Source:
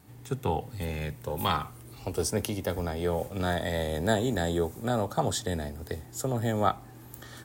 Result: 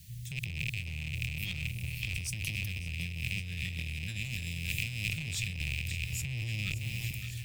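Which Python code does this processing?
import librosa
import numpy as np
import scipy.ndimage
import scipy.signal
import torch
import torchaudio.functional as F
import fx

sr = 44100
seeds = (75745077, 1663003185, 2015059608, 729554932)

p1 = fx.rattle_buzz(x, sr, strikes_db=-42.0, level_db=-15.0)
p2 = fx.quant_dither(p1, sr, seeds[0], bits=8, dither='triangular')
p3 = p1 + (p2 * 10.0 ** (-6.0 / 20.0))
p4 = scipy.signal.sosfilt(scipy.signal.cheby2(4, 50, [320.0, 1100.0], 'bandstop', fs=sr, output='sos'), p3)
p5 = fx.low_shelf(p4, sr, hz=200.0, db=9.5)
p6 = fx.hum_notches(p5, sr, base_hz=50, count=2)
p7 = 10.0 ** (-18.5 / 20.0) * np.tanh(p6 / 10.0 ** (-18.5 / 20.0))
p8 = p7 + fx.echo_split(p7, sr, split_hz=780.0, low_ms=299, high_ms=565, feedback_pct=52, wet_db=-11.5, dry=0)
p9 = fx.over_compress(p8, sr, threshold_db=-29.0, ratio=-1.0)
p10 = fx.high_shelf(p9, sr, hz=4700.0, db=7.0, at=(4.24, 5.09))
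p11 = fx.band_squash(p10, sr, depth_pct=100, at=(5.6, 7.11))
y = p11 * 10.0 ** (-7.0 / 20.0)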